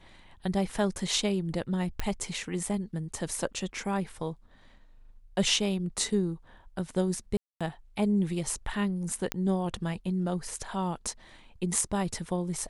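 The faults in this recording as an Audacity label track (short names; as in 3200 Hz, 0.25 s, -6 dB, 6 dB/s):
2.000000	2.000000	pop -16 dBFS
7.370000	7.610000	gap 0.236 s
9.320000	9.320000	pop -11 dBFS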